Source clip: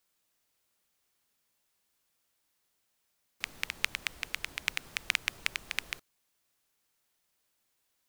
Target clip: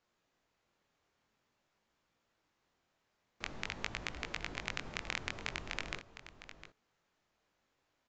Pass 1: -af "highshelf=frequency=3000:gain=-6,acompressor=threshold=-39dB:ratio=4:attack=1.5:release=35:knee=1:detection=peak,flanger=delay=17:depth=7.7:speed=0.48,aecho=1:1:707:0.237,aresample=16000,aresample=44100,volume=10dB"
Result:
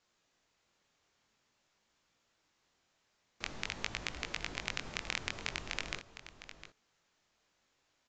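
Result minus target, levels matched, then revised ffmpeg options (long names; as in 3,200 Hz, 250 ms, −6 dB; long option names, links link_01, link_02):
8,000 Hz band +2.5 dB
-af "highshelf=frequency=3000:gain=-16,acompressor=threshold=-39dB:ratio=4:attack=1.5:release=35:knee=1:detection=peak,flanger=delay=17:depth=7.7:speed=0.48,aecho=1:1:707:0.237,aresample=16000,aresample=44100,volume=10dB"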